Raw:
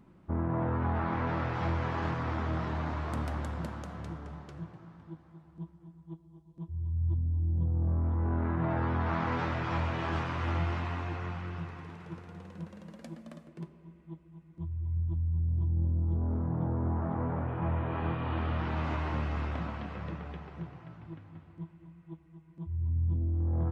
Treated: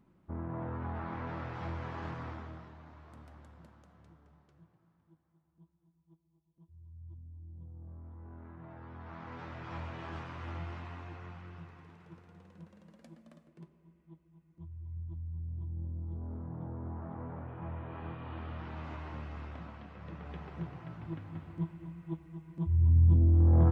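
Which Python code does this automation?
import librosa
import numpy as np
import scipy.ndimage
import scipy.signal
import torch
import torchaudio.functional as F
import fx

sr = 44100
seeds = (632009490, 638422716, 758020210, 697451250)

y = fx.gain(x, sr, db=fx.line((2.24, -8.0), (2.76, -19.5), (8.78, -19.5), (9.77, -10.0), (19.96, -10.0), (20.4, -0.5), (21.5, 7.0)))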